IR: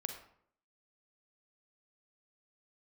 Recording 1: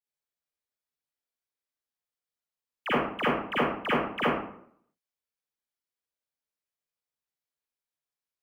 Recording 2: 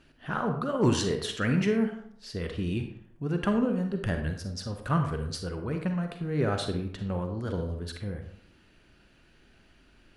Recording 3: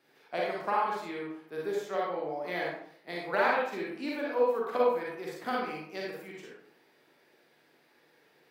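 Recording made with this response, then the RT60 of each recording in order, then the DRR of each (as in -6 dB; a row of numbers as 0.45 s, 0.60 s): 2; 0.65 s, 0.65 s, 0.65 s; -11.0 dB, 5.0 dB, -4.5 dB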